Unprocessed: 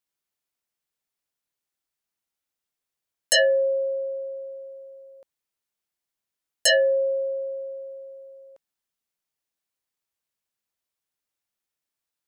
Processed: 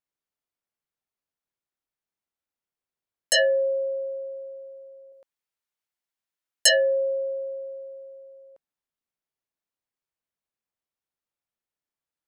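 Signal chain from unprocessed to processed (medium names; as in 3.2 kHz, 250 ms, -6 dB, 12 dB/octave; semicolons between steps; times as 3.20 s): 5.12–6.69 s: tilt shelf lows -5 dB, about 850 Hz; tape noise reduction on one side only decoder only; trim -1.5 dB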